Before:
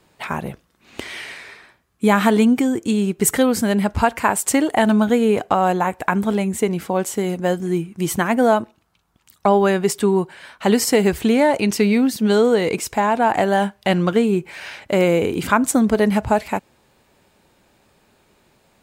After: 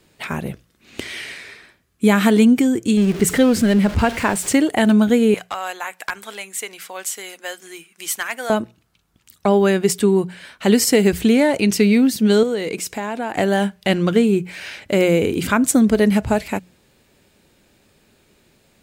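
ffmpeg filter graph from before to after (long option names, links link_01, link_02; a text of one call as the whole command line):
ffmpeg -i in.wav -filter_complex "[0:a]asettb=1/sr,asplit=3[link_01][link_02][link_03];[link_01]atrim=end=2.974[link_04];[link_02]atrim=start=2.97:end=4.53,asetpts=PTS-STARTPTS,afade=type=in:duration=0.004:curve=qsin,afade=type=out:start_time=1.556:duration=0.004:curve=qsin,aeval=exprs='val(0)+0.5*0.0596*sgn(val(0))':channel_layout=same,lowpass=frequency=3800:poles=1[link_05];[link_03]atrim=start=4.526[link_06];[link_04][link_05]acrossfade=duration=0.004:curve1=hsin:curve2=qsin[link_07];[link_07][link_06]acrossfade=duration=0.004:curve1=qsin:curve2=hsin,asettb=1/sr,asplit=3[link_08][link_09][link_10];[link_08]atrim=end=5.344[link_11];[link_09]atrim=start=5.34:end=8.5,asetpts=PTS-STARTPTS,afade=type=in:duration=0.004:curve=qsin,afade=type=out:start_time=3.156:duration=0.004:curve=qsin,highpass=1100,volume=12.5dB,asoftclip=hard,volume=-12.5dB[link_12];[link_10]atrim=start=8.496[link_13];[link_11][link_12]acrossfade=duration=0.004:curve1=hsin:curve2=qsin[link_14];[link_14][link_13]acrossfade=duration=0.004:curve1=qsin:curve2=hsin,asettb=1/sr,asplit=3[link_15][link_16][link_17];[link_15]atrim=end=12.434[link_18];[link_16]atrim=start=12.43:end=13.37,asetpts=PTS-STARTPTS,afade=type=in:duration=0.004:curve=qsin,afade=type=out:start_time=0.936:duration=0.004:curve=qsin,equalizer=frequency=80:width=0.64:gain=-7.5,acompressor=threshold=-29dB:ratio=1.5:attack=3.2:release=140:knee=1:detection=peak,highpass=59[link_19];[link_17]atrim=start=13.366[link_20];[link_18][link_19]acrossfade=duration=0.004:curve1=hsin:curve2=qsin[link_21];[link_21][link_20]acrossfade=duration=0.004:curve1=qsin:curve2=hsin,equalizer=frequency=920:width=1.1:gain=-8.5,bandreject=frequency=60:width_type=h:width=6,bandreject=frequency=120:width_type=h:width=6,bandreject=frequency=180:width_type=h:width=6,volume=3dB" out.wav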